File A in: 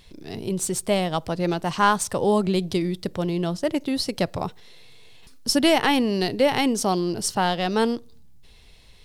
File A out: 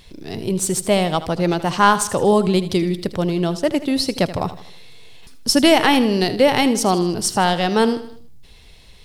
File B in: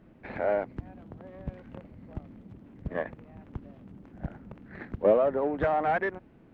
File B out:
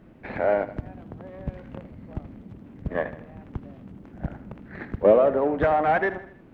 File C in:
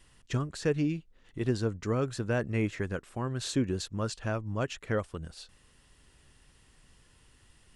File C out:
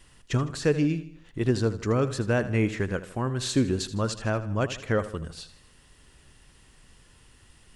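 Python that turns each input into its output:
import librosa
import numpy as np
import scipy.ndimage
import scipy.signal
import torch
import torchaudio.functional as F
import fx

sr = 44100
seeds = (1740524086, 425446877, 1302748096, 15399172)

y = fx.echo_feedback(x, sr, ms=79, feedback_pct=47, wet_db=-14.0)
y = y * 10.0 ** (5.0 / 20.0)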